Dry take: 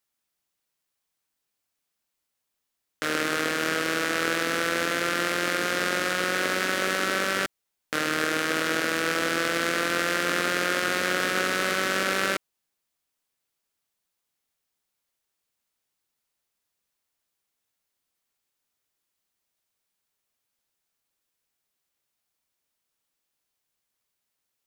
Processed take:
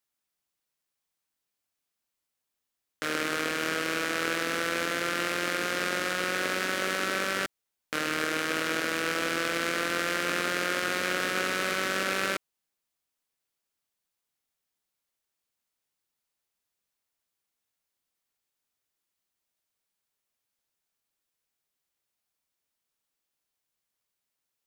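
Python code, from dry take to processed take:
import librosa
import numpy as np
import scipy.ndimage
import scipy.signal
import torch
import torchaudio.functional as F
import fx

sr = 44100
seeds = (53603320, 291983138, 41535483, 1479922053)

y = fx.rattle_buzz(x, sr, strikes_db=-37.0, level_db=-23.0)
y = y * librosa.db_to_amplitude(-3.5)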